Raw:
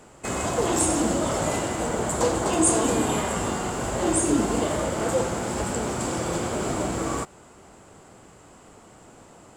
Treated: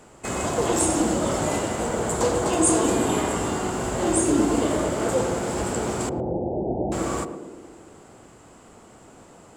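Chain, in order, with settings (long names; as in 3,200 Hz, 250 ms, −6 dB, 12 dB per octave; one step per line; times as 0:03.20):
0:06.09–0:06.92: Butterworth low-pass 860 Hz 96 dB per octave
feedback echo with a band-pass in the loop 111 ms, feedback 71%, band-pass 340 Hz, level −5 dB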